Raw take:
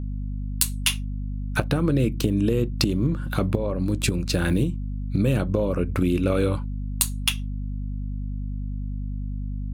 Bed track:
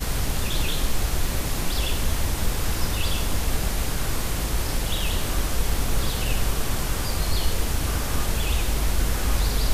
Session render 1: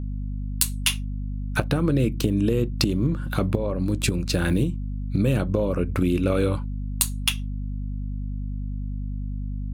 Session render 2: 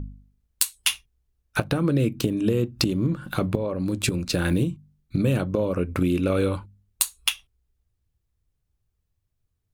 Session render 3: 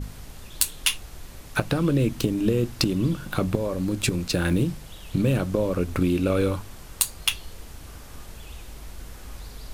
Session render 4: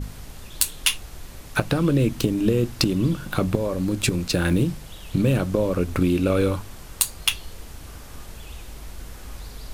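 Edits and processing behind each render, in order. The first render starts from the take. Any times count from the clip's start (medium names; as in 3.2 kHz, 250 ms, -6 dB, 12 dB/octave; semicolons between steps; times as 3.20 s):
no audible change
de-hum 50 Hz, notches 5
add bed track -17 dB
trim +2 dB; peak limiter -3 dBFS, peak gain reduction 1 dB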